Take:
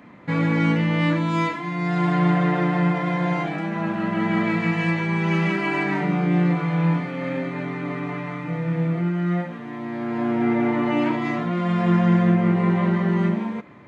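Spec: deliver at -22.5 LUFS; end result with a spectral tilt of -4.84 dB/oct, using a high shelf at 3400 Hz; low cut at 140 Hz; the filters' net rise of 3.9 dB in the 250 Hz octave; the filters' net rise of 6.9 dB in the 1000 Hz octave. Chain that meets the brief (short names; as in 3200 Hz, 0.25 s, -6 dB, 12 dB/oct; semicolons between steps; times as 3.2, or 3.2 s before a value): HPF 140 Hz; bell 250 Hz +7 dB; bell 1000 Hz +7.5 dB; high shelf 3400 Hz +4 dB; gain -4 dB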